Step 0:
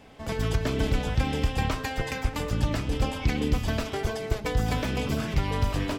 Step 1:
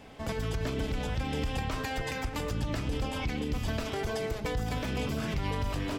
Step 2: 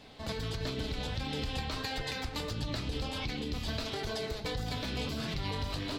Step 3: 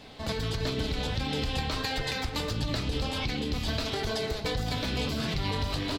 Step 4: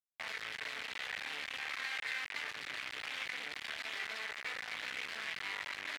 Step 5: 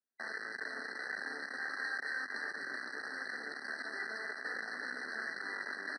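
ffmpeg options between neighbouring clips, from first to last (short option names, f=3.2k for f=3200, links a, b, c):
-af "alimiter=limit=-24dB:level=0:latency=1:release=104,volume=1dB"
-af "equalizer=f=4.1k:t=o:w=0.55:g=13.5,flanger=delay=6.1:depth=7.9:regen=-54:speed=1.5:shape=triangular"
-af "aecho=1:1:317:0.15,volume=5dB"
-af "acompressor=threshold=-31dB:ratio=6,acrusher=bits=3:dc=4:mix=0:aa=0.000001,bandpass=f=2k:t=q:w=2.8:csg=0,volume=7dB"
-filter_complex "[0:a]highpass=f=180:w=0.5412,highpass=f=180:w=1.3066,equalizer=f=250:t=q:w=4:g=9,equalizer=f=390:t=q:w=4:g=7,equalizer=f=1k:t=q:w=4:g=-7,equalizer=f=1.6k:t=q:w=4:g=7,equalizer=f=2.5k:t=q:w=4:g=-8,equalizer=f=5.1k:t=q:w=4:g=-6,lowpass=f=8.8k:w=0.5412,lowpass=f=8.8k:w=1.3066,asplit=2[a][b];[b]aecho=0:1:514:0.398[c];[a][c]amix=inputs=2:normalize=0,afftfilt=real='re*eq(mod(floor(b*sr/1024/2000),2),0)':imag='im*eq(mod(floor(b*sr/1024/2000),2),0)':win_size=1024:overlap=0.75,volume=1.5dB"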